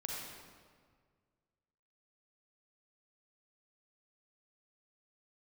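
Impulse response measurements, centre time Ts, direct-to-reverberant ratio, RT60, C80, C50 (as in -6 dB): 0.101 s, -2.5 dB, 1.8 s, 0.5 dB, -2.0 dB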